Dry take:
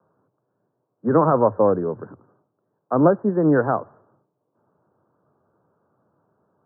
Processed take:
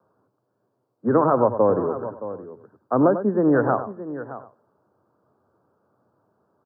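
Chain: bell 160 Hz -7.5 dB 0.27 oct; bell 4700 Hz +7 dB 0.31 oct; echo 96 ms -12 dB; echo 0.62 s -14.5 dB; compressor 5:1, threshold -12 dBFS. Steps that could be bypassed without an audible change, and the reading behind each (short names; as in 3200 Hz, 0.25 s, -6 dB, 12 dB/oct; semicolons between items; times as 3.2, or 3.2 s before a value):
bell 4700 Hz: input band ends at 1600 Hz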